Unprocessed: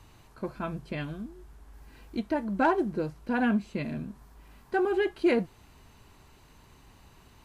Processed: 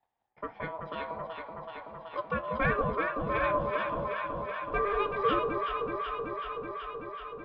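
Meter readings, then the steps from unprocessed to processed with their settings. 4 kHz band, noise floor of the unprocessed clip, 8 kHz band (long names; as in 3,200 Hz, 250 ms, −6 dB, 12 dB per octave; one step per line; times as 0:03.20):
+1.0 dB, −57 dBFS, can't be measured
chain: noise gate −50 dBFS, range −26 dB
low-pass filter 2,900 Hz 24 dB per octave
ring modulation 810 Hz
on a send: delay that swaps between a low-pass and a high-pass 189 ms, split 910 Hz, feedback 88%, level −3.5 dB
on the sum: level −1 dB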